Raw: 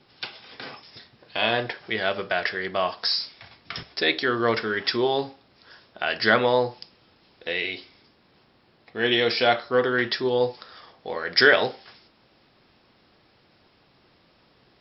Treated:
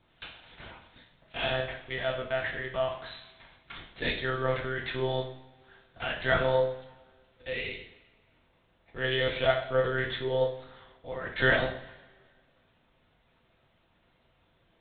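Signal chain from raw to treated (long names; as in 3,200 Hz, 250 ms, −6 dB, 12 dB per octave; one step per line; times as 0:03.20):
one-pitch LPC vocoder at 8 kHz 130 Hz
coupled-rooms reverb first 0.58 s, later 1.8 s, from −18 dB, DRR 1.5 dB
level −9 dB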